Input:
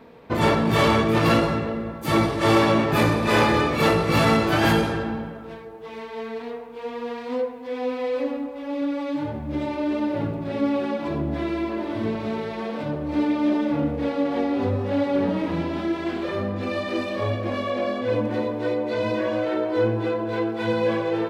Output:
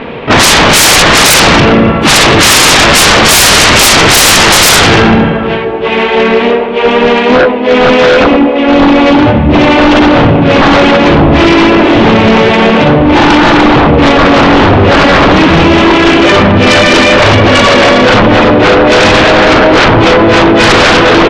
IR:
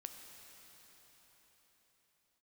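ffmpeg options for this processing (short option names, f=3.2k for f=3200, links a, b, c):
-filter_complex "[0:a]asplit=3[a][b][c];[b]asetrate=37084,aresample=44100,atempo=1.18921,volume=-7dB[d];[c]asetrate=55563,aresample=44100,atempo=0.793701,volume=-11dB[e];[a][d][e]amix=inputs=3:normalize=0,lowpass=f=2.9k:t=q:w=2.6,aeval=exprs='0.668*sin(PI/2*8.91*val(0)/0.668)':c=same,volume=2.5dB"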